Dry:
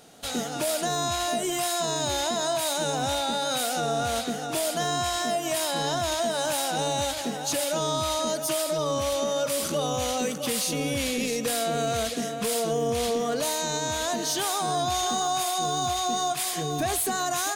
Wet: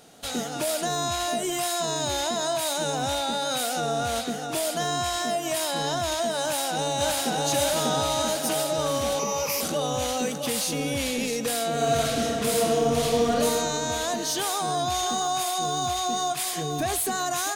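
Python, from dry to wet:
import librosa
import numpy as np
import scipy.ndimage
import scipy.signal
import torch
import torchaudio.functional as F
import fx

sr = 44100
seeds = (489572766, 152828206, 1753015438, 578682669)

y = fx.echo_throw(x, sr, start_s=6.41, length_s=1.03, ms=590, feedback_pct=70, wet_db=-0.5)
y = fx.ripple_eq(y, sr, per_octave=0.81, db=16, at=(9.19, 9.61))
y = fx.reverb_throw(y, sr, start_s=11.72, length_s=1.62, rt60_s=2.6, drr_db=-1.5)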